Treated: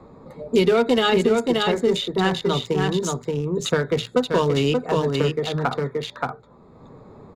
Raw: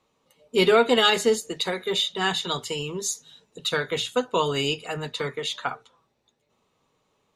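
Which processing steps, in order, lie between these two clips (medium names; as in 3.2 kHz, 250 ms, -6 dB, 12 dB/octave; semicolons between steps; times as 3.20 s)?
local Wiener filter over 15 samples; bass shelf 440 Hz +11 dB; delay 577 ms -5.5 dB; loudness maximiser +5.5 dB; three bands compressed up and down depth 70%; trim -6 dB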